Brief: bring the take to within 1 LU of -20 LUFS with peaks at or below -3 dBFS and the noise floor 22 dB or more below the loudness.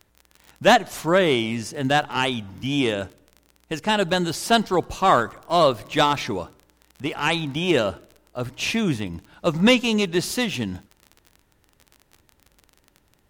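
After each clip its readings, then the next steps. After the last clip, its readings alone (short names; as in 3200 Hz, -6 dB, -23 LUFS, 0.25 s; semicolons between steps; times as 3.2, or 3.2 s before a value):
ticks 29/s; loudness -22.0 LUFS; peak -3.5 dBFS; loudness target -20.0 LUFS
-> de-click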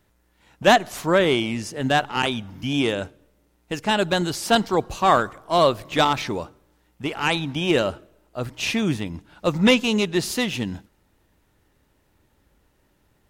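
ticks 0.075/s; loudness -22.0 LUFS; peak -3.5 dBFS; loudness target -20.0 LUFS
-> gain +2 dB; limiter -3 dBFS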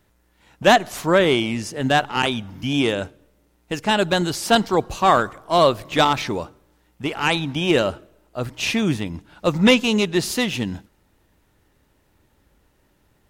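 loudness -20.0 LUFS; peak -3.0 dBFS; noise floor -63 dBFS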